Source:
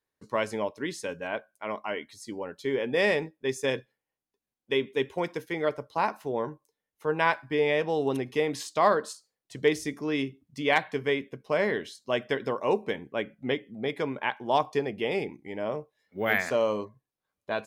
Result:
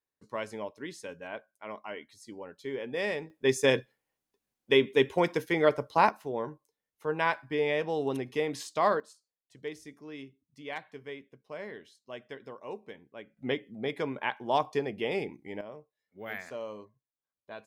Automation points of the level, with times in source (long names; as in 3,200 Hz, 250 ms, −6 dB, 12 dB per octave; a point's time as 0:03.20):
−7.5 dB
from 0:03.30 +4 dB
from 0:06.09 −3.5 dB
from 0:09.00 −15 dB
from 0:13.37 −2.5 dB
from 0:15.61 −13.5 dB